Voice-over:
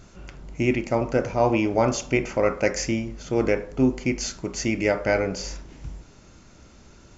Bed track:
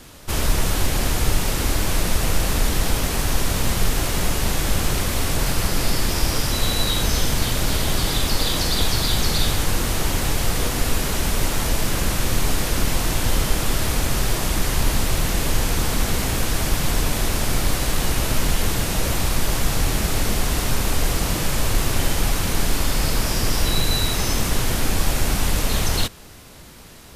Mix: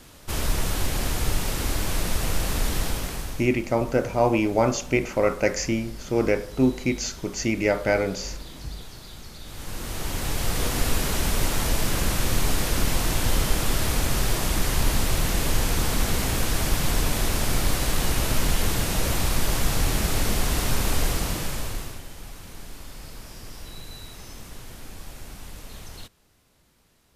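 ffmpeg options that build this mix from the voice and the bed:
ffmpeg -i stem1.wav -i stem2.wav -filter_complex "[0:a]adelay=2800,volume=0dB[link_01];[1:a]volume=15dB,afade=type=out:start_time=2.78:duration=0.72:silence=0.133352,afade=type=in:start_time=9.44:duration=1.32:silence=0.1,afade=type=out:start_time=20.98:duration=1.04:silence=0.133352[link_02];[link_01][link_02]amix=inputs=2:normalize=0" out.wav

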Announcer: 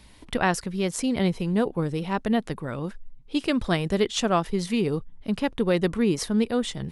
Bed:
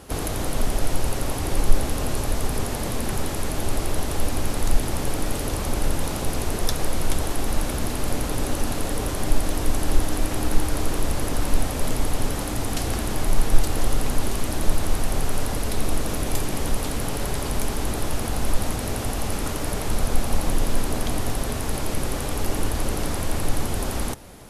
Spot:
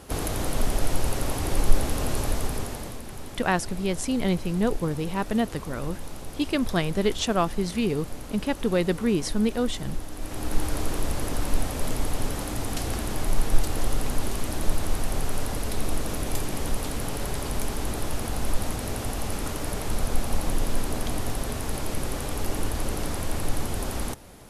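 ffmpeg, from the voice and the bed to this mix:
ffmpeg -i stem1.wav -i stem2.wav -filter_complex "[0:a]adelay=3050,volume=-1dB[link_01];[1:a]volume=8dB,afade=type=out:start_time=2.27:duration=0.76:silence=0.266073,afade=type=in:start_time=10.15:duration=0.5:silence=0.334965[link_02];[link_01][link_02]amix=inputs=2:normalize=0" out.wav

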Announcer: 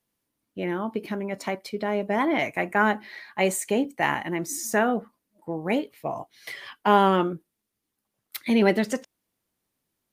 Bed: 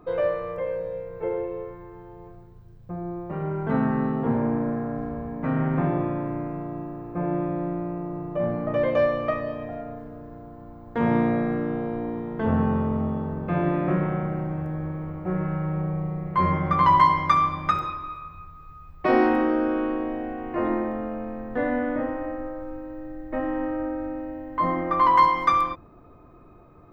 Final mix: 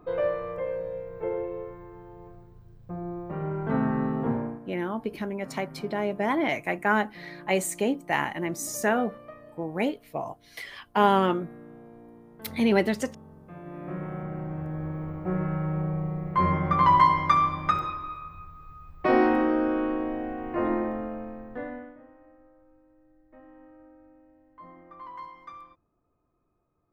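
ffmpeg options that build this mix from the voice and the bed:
ffmpeg -i stem1.wav -i stem2.wav -filter_complex "[0:a]adelay=4100,volume=-2dB[link_01];[1:a]volume=15.5dB,afade=type=out:start_time=4.27:duration=0.33:silence=0.141254,afade=type=in:start_time=13.64:duration=1.38:silence=0.125893,afade=type=out:start_time=20.86:duration=1.1:silence=0.0707946[link_02];[link_01][link_02]amix=inputs=2:normalize=0" out.wav

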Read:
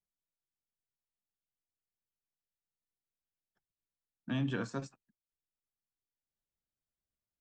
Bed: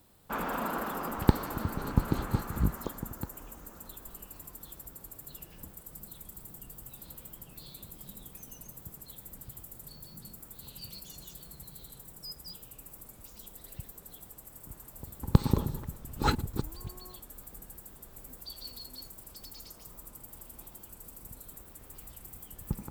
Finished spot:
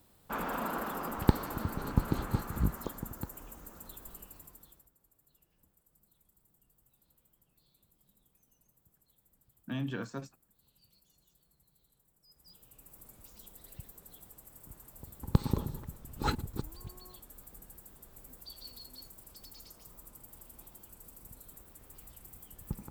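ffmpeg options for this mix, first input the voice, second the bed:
ffmpeg -i stem1.wav -i stem2.wav -filter_complex "[0:a]adelay=5400,volume=-2dB[link_01];[1:a]volume=16dB,afade=type=out:start_time=4.11:duration=0.8:silence=0.0944061,afade=type=in:start_time=12.27:duration=0.82:silence=0.125893[link_02];[link_01][link_02]amix=inputs=2:normalize=0" out.wav

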